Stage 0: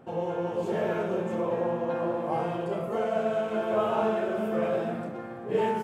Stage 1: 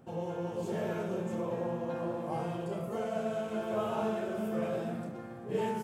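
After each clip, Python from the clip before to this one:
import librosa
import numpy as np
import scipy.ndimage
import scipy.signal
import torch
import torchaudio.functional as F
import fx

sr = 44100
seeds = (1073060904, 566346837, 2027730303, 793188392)

y = fx.bass_treble(x, sr, bass_db=7, treble_db=10)
y = F.gain(torch.from_numpy(y), -7.5).numpy()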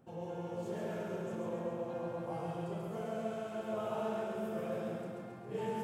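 y = fx.echo_feedback(x, sr, ms=136, feedback_pct=58, wet_db=-3.0)
y = F.gain(torch.from_numpy(y), -7.0).numpy()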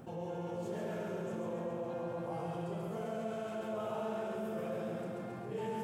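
y = fx.env_flatten(x, sr, amount_pct=50)
y = F.gain(torch.from_numpy(y), -2.0).numpy()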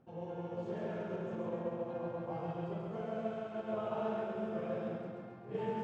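y = fx.air_absorb(x, sr, metres=170.0)
y = fx.upward_expand(y, sr, threshold_db=-49.0, expansion=2.5)
y = F.gain(torch.from_numpy(y), 3.5).numpy()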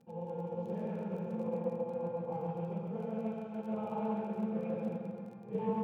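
y = fx.small_body(x, sr, hz=(200.0, 480.0, 840.0, 2400.0), ring_ms=60, db=17)
y = fx.dmg_crackle(y, sr, seeds[0], per_s=24.0, level_db=-41.0)
y = fx.doppler_dist(y, sr, depth_ms=0.14)
y = F.gain(torch.from_numpy(y), -8.5).numpy()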